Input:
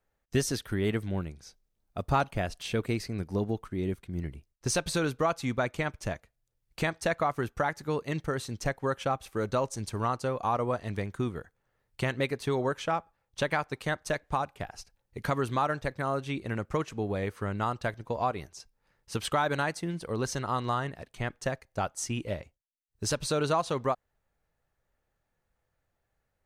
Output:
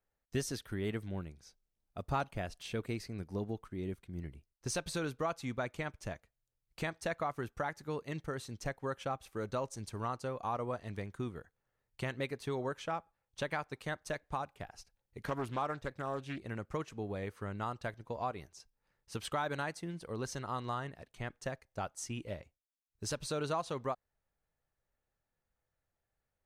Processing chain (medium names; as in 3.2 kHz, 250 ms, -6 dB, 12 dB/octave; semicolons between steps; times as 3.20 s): 15.23–16.44 s: loudspeaker Doppler distortion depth 0.58 ms; trim -8 dB